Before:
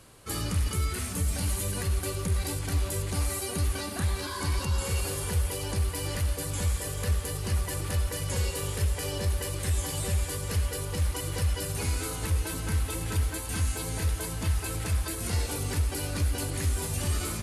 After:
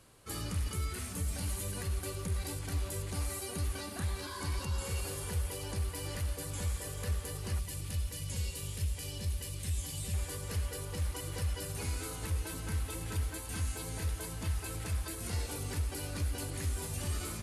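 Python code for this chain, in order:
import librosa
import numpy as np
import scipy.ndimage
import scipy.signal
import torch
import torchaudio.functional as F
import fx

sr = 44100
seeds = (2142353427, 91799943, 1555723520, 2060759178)

y = fx.band_shelf(x, sr, hz=780.0, db=-8.5, octaves=2.8, at=(7.59, 10.14))
y = F.gain(torch.from_numpy(y), -7.0).numpy()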